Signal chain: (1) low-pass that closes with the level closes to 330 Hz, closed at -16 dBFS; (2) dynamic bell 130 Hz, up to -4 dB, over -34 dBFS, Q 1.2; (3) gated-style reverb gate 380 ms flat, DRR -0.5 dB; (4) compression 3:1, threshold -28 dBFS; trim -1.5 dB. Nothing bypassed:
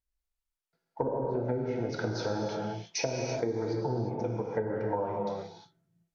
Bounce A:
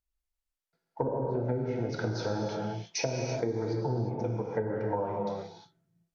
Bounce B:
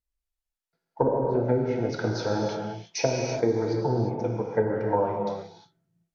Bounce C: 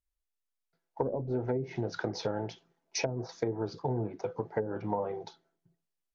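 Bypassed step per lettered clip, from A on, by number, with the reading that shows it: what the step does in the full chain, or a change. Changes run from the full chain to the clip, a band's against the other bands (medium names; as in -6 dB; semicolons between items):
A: 2, 125 Hz band +3.0 dB; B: 4, mean gain reduction 4.5 dB; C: 3, momentary loudness spread change +2 LU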